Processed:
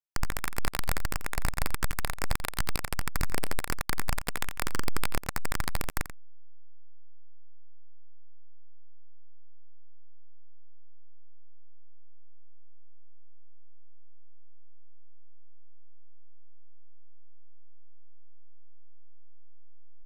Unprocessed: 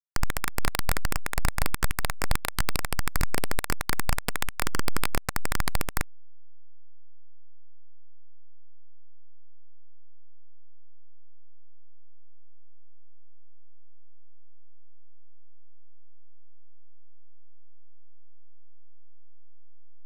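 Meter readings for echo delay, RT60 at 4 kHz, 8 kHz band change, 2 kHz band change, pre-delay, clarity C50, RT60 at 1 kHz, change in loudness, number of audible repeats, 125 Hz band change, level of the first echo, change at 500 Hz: 87 ms, no reverb, -3.5 dB, -3.5 dB, no reverb, no reverb, no reverb, -3.5 dB, 1, -3.0 dB, -12.5 dB, -3.5 dB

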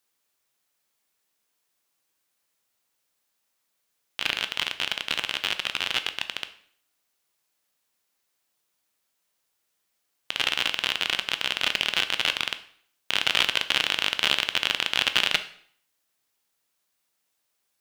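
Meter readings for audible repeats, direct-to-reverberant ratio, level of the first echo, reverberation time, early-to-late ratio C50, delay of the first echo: no echo, 9.5 dB, no echo, 0.60 s, 14.0 dB, no echo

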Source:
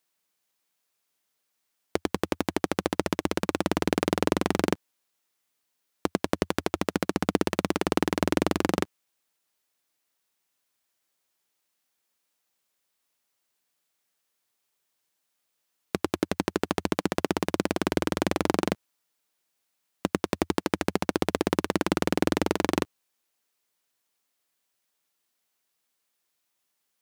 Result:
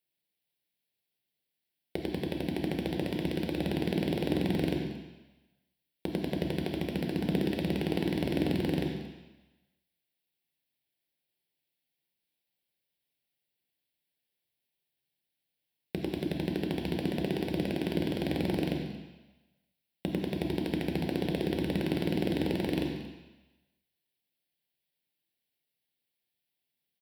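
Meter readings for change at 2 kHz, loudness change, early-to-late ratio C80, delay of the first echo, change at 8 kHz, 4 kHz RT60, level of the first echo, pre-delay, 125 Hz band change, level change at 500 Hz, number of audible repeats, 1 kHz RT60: -8.0 dB, -4.0 dB, 5.0 dB, 229 ms, -15.0 dB, 1.2 s, -18.0 dB, 3 ms, +1.0 dB, -5.5 dB, 1, 1.1 s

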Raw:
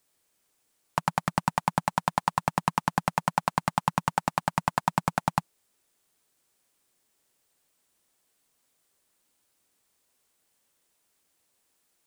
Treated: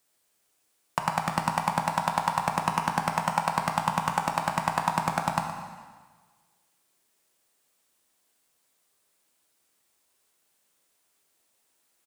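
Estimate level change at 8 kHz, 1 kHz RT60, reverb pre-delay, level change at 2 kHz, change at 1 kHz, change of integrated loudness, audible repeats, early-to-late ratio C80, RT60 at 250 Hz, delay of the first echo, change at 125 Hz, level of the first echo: +1.5 dB, 1.4 s, 6 ms, +1.0 dB, +1.5 dB, +1.0 dB, 1, 6.0 dB, 1.4 s, 118 ms, -1.0 dB, -13.0 dB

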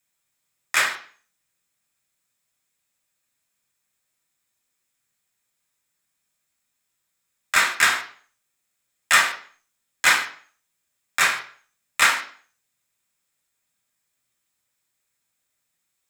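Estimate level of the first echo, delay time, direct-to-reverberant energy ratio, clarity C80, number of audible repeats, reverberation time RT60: no echo, no echo, 0.5 dB, 13.5 dB, no echo, 0.45 s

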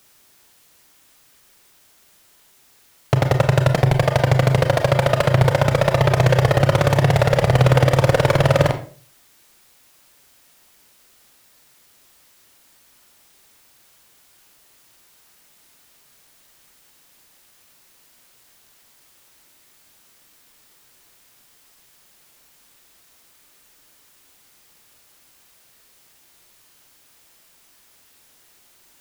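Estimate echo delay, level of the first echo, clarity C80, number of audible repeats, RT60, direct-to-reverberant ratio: no echo, no echo, 15.0 dB, no echo, 0.45 s, 6.0 dB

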